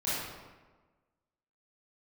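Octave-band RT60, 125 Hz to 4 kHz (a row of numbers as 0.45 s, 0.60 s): 1.4 s, 1.4 s, 1.4 s, 1.3 s, 1.1 s, 0.85 s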